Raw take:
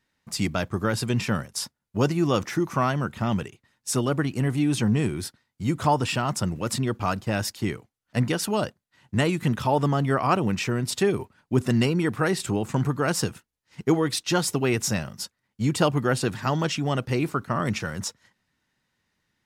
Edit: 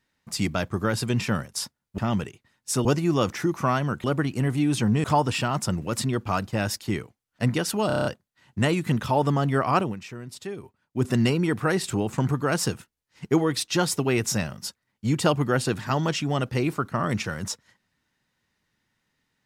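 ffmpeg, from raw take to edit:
-filter_complex "[0:a]asplit=13[a][b][c][d][e][f][g][h][i][j][k][l][m];[a]atrim=end=1.982[n];[b]atrim=start=3.168:end=4.042[o];[c]atrim=start=1.978:end=3.172[p];[d]atrim=start=4.038:end=5.042[q];[e]atrim=start=5.778:end=8.642[r];[f]atrim=start=8.608:end=8.642[s];[g]atrim=start=8.608:end=8.642[t];[h]atrim=start=8.608:end=8.642[u];[i]atrim=start=8.608:end=8.642[v];[j]atrim=start=8.608:end=8.642[w];[k]atrim=start=8.608:end=10.52,asetpts=PTS-STARTPTS,afade=t=out:st=1.752:d=0.16:silence=0.237137[x];[l]atrim=start=10.52:end=11.46,asetpts=PTS-STARTPTS,volume=-12.5dB[y];[m]atrim=start=11.46,asetpts=PTS-STARTPTS,afade=t=in:d=0.16:silence=0.237137[z];[n][o]acrossfade=d=0.004:c1=hsin:c2=hsin[aa];[aa][p]acrossfade=d=0.004:c1=hsin:c2=hsin[ab];[ab][q]acrossfade=d=0.004:c1=hsin:c2=hsin[ac];[ac][r]acrossfade=d=0.004:c1=hsin:c2=hsin[ad];[ad][s]acrossfade=d=0.004:c1=hsin:c2=hsin[ae];[ae][t]acrossfade=d=0.004:c1=hsin:c2=hsin[af];[af][u]acrossfade=d=0.004:c1=hsin:c2=hsin[ag];[ag][v]acrossfade=d=0.004:c1=hsin:c2=hsin[ah];[ah][w]acrossfade=d=0.004:c1=hsin:c2=hsin[ai];[x][y][z]concat=n=3:v=0:a=1[aj];[ai][aj]acrossfade=d=0.004:c1=hsin:c2=hsin"

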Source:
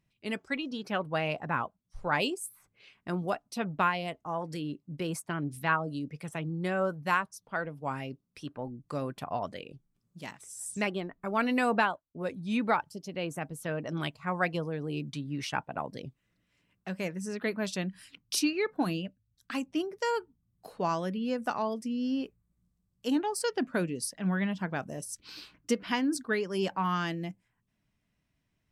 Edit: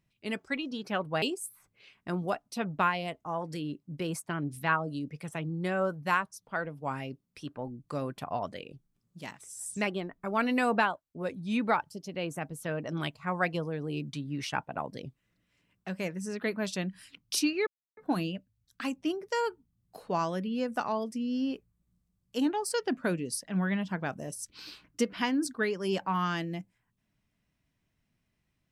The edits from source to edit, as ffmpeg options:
-filter_complex "[0:a]asplit=3[a][b][c];[a]atrim=end=1.222[d];[b]atrim=start=2.218:end=18.67,asetpts=PTS-STARTPTS,afade=t=out:st=16.448:d=0.004:c=hsin,apad=pad_dur=0.3[e];[c]atrim=start=18.67,asetpts=PTS-STARTPTS,afade=t=in:d=0.004:c=hsin[f];[e][f]concat=n=2:v=0:a=1[g];[d][g]acrossfade=d=0.004:c1=hsin:c2=hsin"

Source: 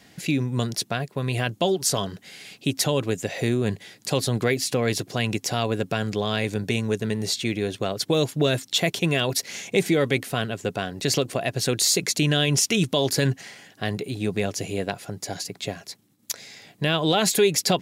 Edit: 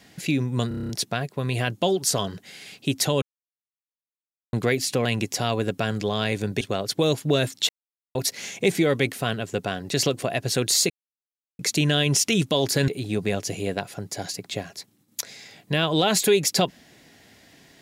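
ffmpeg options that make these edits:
-filter_complex "[0:a]asplit=16[a][b][c][d][e][f][g][h][i][j][k][l][m][n][o][p];[a]atrim=end=0.712[q];[b]atrim=start=0.678:end=0.712[r];[c]atrim=start=0.678:end=0.712[s];[d]atrim=start=0.678:end=0.712[t];[e]atrim=start=0.678:end=0.712[u];[f]atrim=start=0.678:end=0.712[v];[g]atrim=start=0.678:end=0.712[w];[h]atrim=start=0.678:end=3.01,asetpts=PTS-STARTPTS,afade=t=out:st=2.328:d=0.004:c=hsin[x];[i]atrim=start=3.01:end=4.32,asetpts=PTS-STARTPTS,volume=0[y];[j]atrim=start=4.32:end=4.842,asetpts=PTS-STARTPTS,afade=t=in:d=0.004:c=hsin[z];[k]atrim=start=5.168:end=6.732[aa];[l]atrim=start=7.718:end=8.8,asetpts=PTS-STARTPTS,afade=t=out:st=1.078:d=0.004:c=hsin[ab];[m]atrim=start=8.8:end=9.26,asetpts=PTS-STARTPTS,volume=0[ac];[n]atrim=start=9.26:end=12.01,asetpts=PTS-STARTPTS,afade=t=in:d=0.004:c=hsin,afade=t=out:st=2.746:d=0.004:c=hsin,apad=pad_dur=0.69[ad];[o]atrim=start=12.01:end=13.302,asetpts=PTS-STARTPTS,afade=t=in:d=0.004:c=hsin[ae];[p]atrim=start=13.988[af];[q][r]acrossfade=d=0.004:c1=hsin:c2=hsin[ag];[ag][s]acrossfade=d=0.004:c1=hsin:c2=hsin[ah];[ah][t]acrossfade=d=0.004:c1=hsin:c2=hsin[ai];[ai][u]acrossfade=d=0.004:c1=hsin:c2=hsin[aj];[aj][v]acrossfade=d=0.004:c1=hsin:c2=hsin[ak];[ak][w]acrossfade=d=0.004:c1=hsin:c2=hsin[al];[x][y][z]concat=n=3:v=0:a=1[am];[al][am]acrossfade=d=0.004:c1=hsin:c2=hsin[an];[an][aa]acrossfade=d=0.004:c1=hsin:c2=hsin[ao];[ab][ac][ad][ae]concat=n=4:v=0:a=1[ap];[ao][ap]acrossfade=d=0.004:c1=hsin:c2=hsin[aq];[aq][af]acrossfade=d=0.004:c1=hsin:c2=hsin"

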